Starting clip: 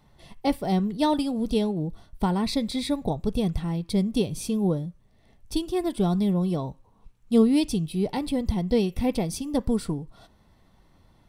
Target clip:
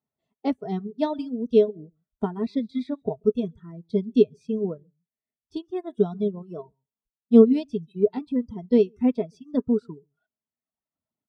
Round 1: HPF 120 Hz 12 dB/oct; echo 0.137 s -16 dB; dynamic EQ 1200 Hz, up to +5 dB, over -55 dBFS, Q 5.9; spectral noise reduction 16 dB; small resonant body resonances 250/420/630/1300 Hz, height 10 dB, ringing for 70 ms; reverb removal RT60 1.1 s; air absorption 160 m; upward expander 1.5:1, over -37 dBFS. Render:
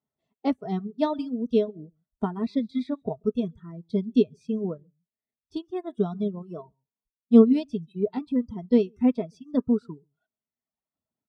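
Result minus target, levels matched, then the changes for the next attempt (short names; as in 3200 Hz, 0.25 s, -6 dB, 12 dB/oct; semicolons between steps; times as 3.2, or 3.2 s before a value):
500 Hz band -2.5 dB
change: dynamic EQ 420 Hz, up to +5 dB, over -55 dBFS, Q 5.9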